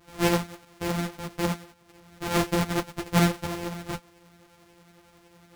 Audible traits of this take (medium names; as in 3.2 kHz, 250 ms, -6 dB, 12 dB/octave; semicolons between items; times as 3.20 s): a buzz of ramps at a fixed pitch in blocks of 256 samples; tremolo saw up 11 Hz, depth 45%; a shimmering, thickened sound